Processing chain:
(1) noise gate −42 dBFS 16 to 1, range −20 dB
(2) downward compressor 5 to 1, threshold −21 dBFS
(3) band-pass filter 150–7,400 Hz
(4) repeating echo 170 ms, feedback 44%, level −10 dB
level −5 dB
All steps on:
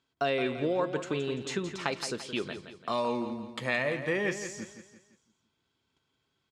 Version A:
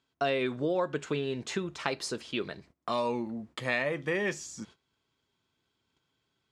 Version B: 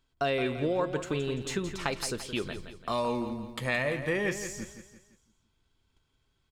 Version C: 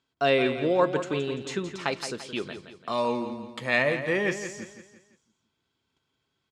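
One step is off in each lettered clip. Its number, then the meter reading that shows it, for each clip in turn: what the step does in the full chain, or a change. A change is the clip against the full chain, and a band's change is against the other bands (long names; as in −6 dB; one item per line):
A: 4, echo-to-direct ratio −9.0 dB to none audible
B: 3, 125 Hz band +3.5 dB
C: 2, average gain reduction 2.0 dB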